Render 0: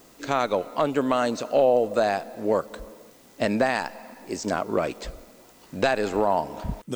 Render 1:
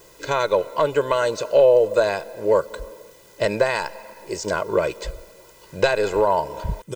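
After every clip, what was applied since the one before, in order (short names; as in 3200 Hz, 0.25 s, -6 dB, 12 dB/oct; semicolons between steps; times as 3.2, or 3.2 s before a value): comb 2 ms, depth 91%; gain +1 dB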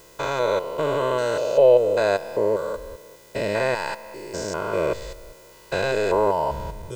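stepped spectrum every 0.2 s; gain +1.5 dB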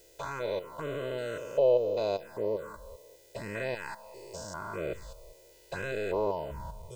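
envelope phaser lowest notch 180 Hz, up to 1700 Hz, full sweep at -16 dBFS; gain -8 dB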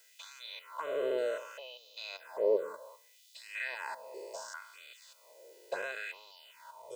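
LFO high-pass sine 0.67 Hz 400–3700 Hz; gain -2.5 dB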